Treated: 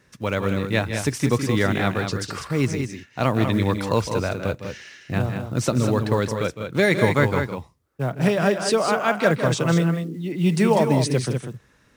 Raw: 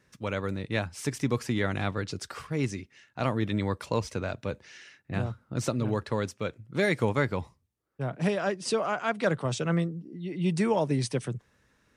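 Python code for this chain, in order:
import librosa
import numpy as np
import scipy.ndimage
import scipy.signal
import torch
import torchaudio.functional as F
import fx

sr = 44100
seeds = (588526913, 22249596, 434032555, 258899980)

y = fx.quant_float(x, sr, bits=4)
y = fx.echo_multitap(y, sr, ms=(159, 196), db=(-11.0, -7.0))
y = F.gain(torch.from_numpy(y), 7.0).numpy()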